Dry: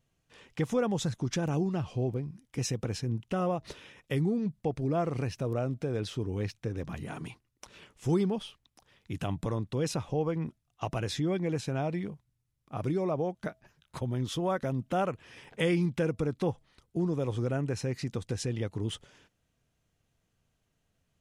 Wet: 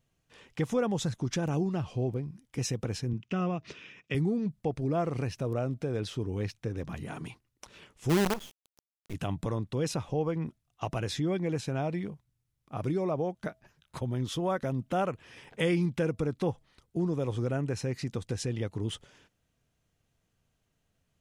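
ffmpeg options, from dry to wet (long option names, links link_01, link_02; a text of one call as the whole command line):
ffmpeg -i in.wav -filter_complex "[0:a]asettb=1/sr,asplit=3[link_01][link_02][link_03];[link_01]atrim=end=3.134[link_04];[link_02]atrim=start=3.13:end=4.15,asetpts=PTS-STARTPTS,afade=type=in:duration=0.004:curve=qsin,afade=type=out:start_time=1.016:duration=0.004:curve=qsin,highpass=110,equalizer=frequency=180:width_type=q:width=4:gain=3,equalizer=frequency=550:width_type=q:width=4:gain=-7,equalizer=frequency=860:width_type=q:width=4:gain=-8,equalizer=frequency=2500:width_type=q:width=4:gain=7,equalizer=frequency=4100:width_type=q:width=4:gain=-5,lowpass=frequency=6500:width=0.5412,lowpass=frequency=6500:width=1.3066[link_05];[link_03]atrim=start=4.146[link_06];[link_04][link_05]acrossfade=duration=0.004:curve1=hsin:curve2=qsin[link_07];[link_07][link_06]acrossfade=duration=0.004:curve1=qsin:curve2=hsin,asplit=3[link_08][link_09][link_10];[link_08]afade=type=out:start_time=8.09:duration=0.02[link_11];[link_09]acrusher=bits=5:dc=4:mix=0:aa=0.000001,afade=type=in:start_time=8.09:duration=0.02,afade=type=out:start_time=9.13:duration=0.02[link_12];[link_10]afade=type=in:start_time=9.13:duration=0.02[link_13];[link_11][link_12][link_13]amix=inputs=3:normalize=0" out.wav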